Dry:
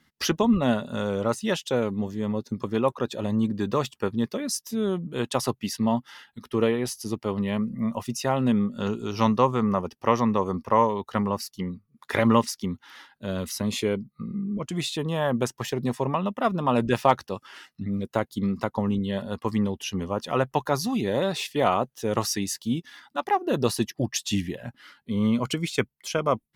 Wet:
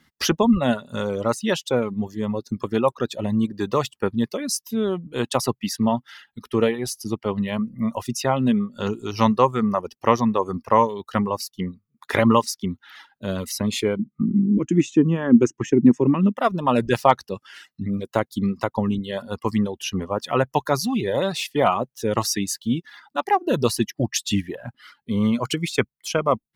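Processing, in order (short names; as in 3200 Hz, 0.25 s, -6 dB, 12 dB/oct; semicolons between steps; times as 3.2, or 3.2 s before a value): 13.99–16.37 EQ curve 110 Hz 0 dB, 310 Hz +15 dB, 660 Hz -12 dB, 1600 Hz -2 dB, 2700 Hz -3 dB, 4300 Hz -22 dB, 6400 Hz +1 dB, 11000 Hz -27 dB; reverb removal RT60 1 s; gain +4 dB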